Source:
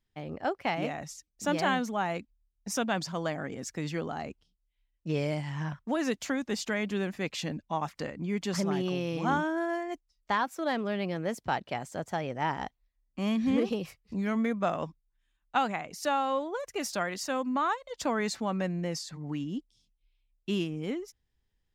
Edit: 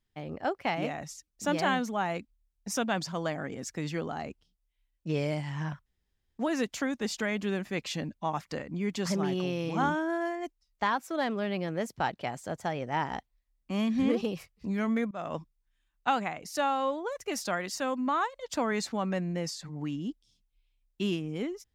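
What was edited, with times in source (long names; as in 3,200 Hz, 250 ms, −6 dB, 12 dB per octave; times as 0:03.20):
0:05.86: splice in room tone 0.52 s
0:14.59–0:14.85: fade in, from −23 dB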